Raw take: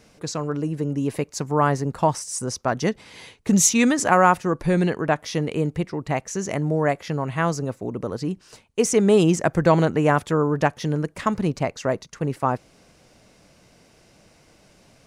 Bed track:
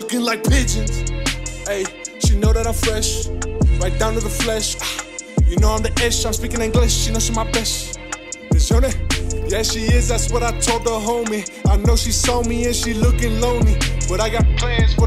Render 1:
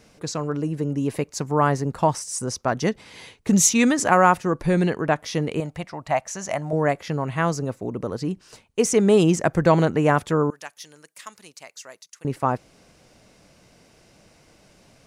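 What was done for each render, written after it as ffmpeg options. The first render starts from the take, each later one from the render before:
-filter_complex "[0:a]asettb=1/sr,asplit=3[a][b][c];[a]atrim=end=5.604[d];[b]atrim=start=5.6:end=6.73,asetpts=PTS-STARTPTS,afade=t=in:d=0.004:c=qsin,afade=t=out:st=1.126:d=0.004:c=qsin,lowshelf=f=520:t=q:w=3:g=-6.5[e];[c]atrim=start=6.726[f];[d][e]acrossfade=d=0.004:c1=hsin:c2=qsin[g];[g][f]acrossfade=d=0.004:c1=qsin:c2=hsin,asettb=1/sr,asplit=3[h][i][j];[h]atrim=end=10.504[k];[i]atrim=start=10.5:end=12.25,asetpts=PTS-STARTPTS,afade=t=in:d=0.004:c=qsin,afade=t=out:st=1.746:d=0.004:c=qsin,aderivative[l];[j]atrim=start=12.246[m];[k][l]acrossfade=d=0.004:c1=hsin:c2=qsin[n];[n][m]acrossfade=d=0.004:c1=qsin:c2=hsin"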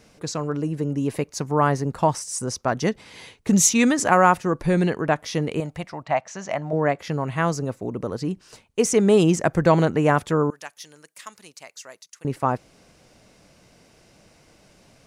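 -filter_complex "[0:a]asettb=1/sr,asplit=3[a][b][c];[a]atrim=end=1.234[d];[b]atrim=start=1.23:end=1.82,asetpts=PTS-STARTPTS,afade=t=in:d=0.004:c=qsin,afade=t=out:st=0.586:d=0.004:c=qsin,bandreject=f=7.5k:w=12[e];[c]atrim=start=1.816[f];[d][e]acrossfade=d=0.004:c1=hsin:c2=qsin[g];[g][f]acrossfade=d=0.004:c1=qsin:c2=hsin,asettb=1/sr,asplit=3[h][i][j];[h]atrim=end=6.034[k];[i]atrim=start=6.03:end=6.99,asetpts=PTS-STARTPTS,afade=t=in:d=0.004:c=qsin,afade=t=out:st=0.956:d=0.004:c=qsin,highpass=110,lowpass=4.6k[l];[j]atrim=start=6.986[m];[k][l]acrossfade=d=0.004:c1=hsin:c2=qsin[n];[n][m]acrossfade=d=0.004:c1=qsin:c2=hsin"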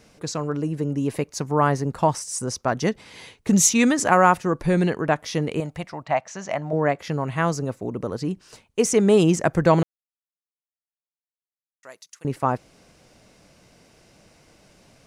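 -filter_complex "[0:a]asplit=3[a][b][c];[a]atrim=end=9.83,asetpts=PTS-STARTPTS,afade=t=out:st=9.826:d=0.004:c=hsin[d];[b]atrim=start=9.83:end=11.83,asetpts=PTS-STARTPTS,volume=0[e];[c]atrim=start=11.83,asetpts=PTS-STARTPTS,afade=t=in:d=0.004:c=hsin[f];[d][e][f]concat=n=3:v=0:a=1"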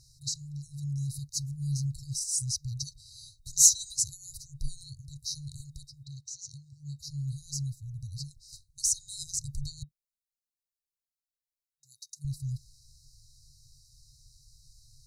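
-af "afftfilt=real='re*(1-between(b*sr/4096,150,3800))':imag='im*(1-between(b*sr/4096,150,3800))':win_size=4096:overlap=0.75,asubboost=boost=3:cutoff=54"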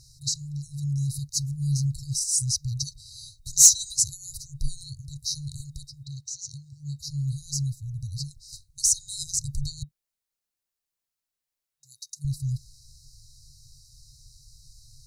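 -af "acontrast=48"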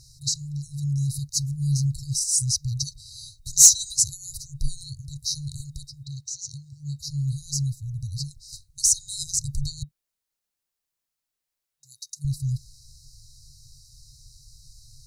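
-af "volume=2dB,alimiter=limit=-1dB:level=0:latency=1"

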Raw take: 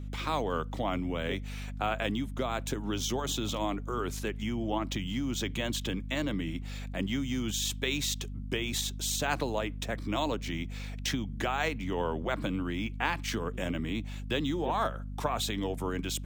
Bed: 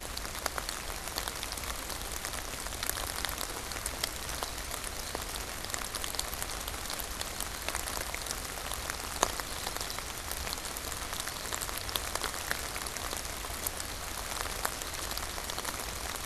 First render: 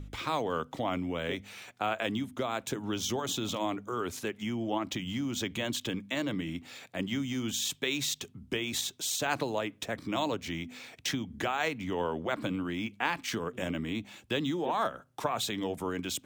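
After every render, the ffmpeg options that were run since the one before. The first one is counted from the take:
-af "bandreject=f=50:t=h:w=4,bandreject=f=100:t=h:w=4,bandreject=f=150:t=h:w=4,bandreject=f=200:t=h:w=4,bandreject=f=250:t=h:w=4"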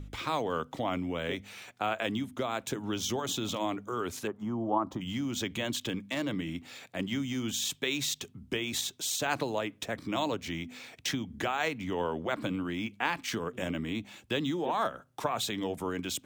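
-filter_complex "[0:a]asettb=1/sr,asplit=3[a][b][c];[a]atrim=end=4.274[d];[b]atrim=start=4.27:end=5.01,asetpts=PTS-STARTPTS,afade=t=in:d=0.004:c=qsin,afade=t=out:st=0.736:d=0.004:c=qsin,highshelf=f=1.6k:t=q:w=3:g=-13[e];[c]atrim=start=5.006[f];[d][e]acrossfade=d=0.004:c1=hsin:c2=qsin[g];[g][f]acrossfade=d=0.004:c1=qsin:c2=hsin,asettb=1/sr,asplit=3[h][i][j];[h]atrim=end=5.834[k];[i]atrim=start=5.83:end=7.73,asetpts=PTS-STARTPTS,afade=t=in:d=0.004:c=qsin,afade=t=out:st=1.896:d=0.004:c=qsin,asoftclip=type=hard:threshold=-24dB[l];[j]atrim=start=7.726[m];[k][l]acrossfade=d=0.004:c1=hsin:c2=qsin[n];[n][m]acrossfade=d=0.004:c1=qsin:c2=hsin"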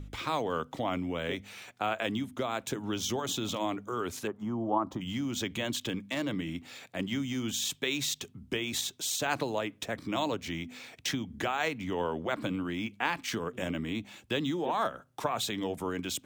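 -af anull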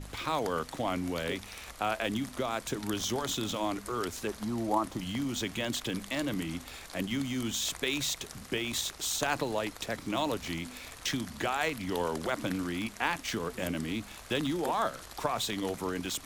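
-filter_complex "[1:a]volume=-11dB[a];[0:a][a]amix=inputs=2:normalize=0"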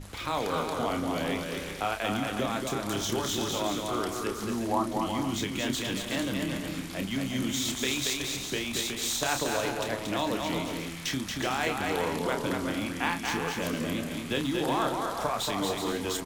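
-filter_complex "[0:a]asplit=2[a][b];[b]adelay=30,volume=-7dB[c];[a][c]amix=inputs=2:normalize=0,aecho=1:1:230|368|450.8|500.5|530.3:0.631|0.398|0.251|0.158|0.1"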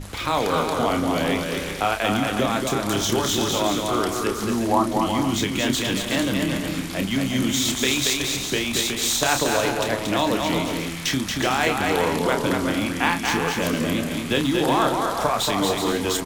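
-af "volume=8dB"

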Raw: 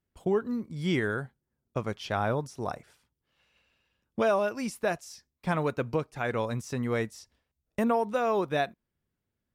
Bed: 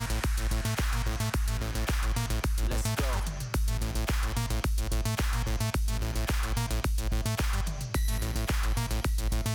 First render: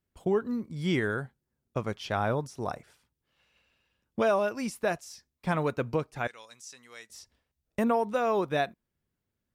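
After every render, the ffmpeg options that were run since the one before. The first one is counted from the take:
-filter_complex "[0:a]asettb=1/sr,asplit=3[a][b][c];[a]atrim=end=6.274[d];[b]atrim=start=6.27:end=7.1,asetpts=PTS-STARTPTS,afade=t=in:d=0.004:c=qsin,afade=t=out:st=0.826:d=0.004:c=qsin,bandpass=f=6.3k:t=q:w=1.1[e];[c]atrim=start=7.096[f];[d][e]acrossfade=d=0.004:c1=hsin:c2=qsin[g];[g][f]acrossfade=d=0.004:c1=qsin:c2=hsin"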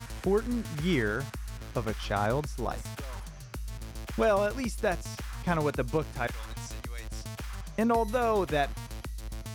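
-filter_complex "[1:a]volume=-10dB[a];[0:a][a]amix=inputs=2:normalize=0"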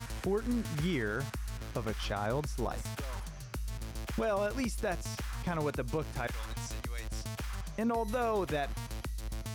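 -af "alimiter=limit=-23.5dB:level=0:latency=1:release=109"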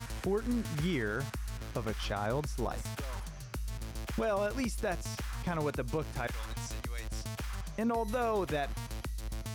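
-af anull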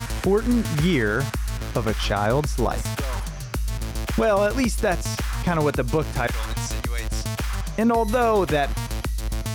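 -af "volume=12dB"

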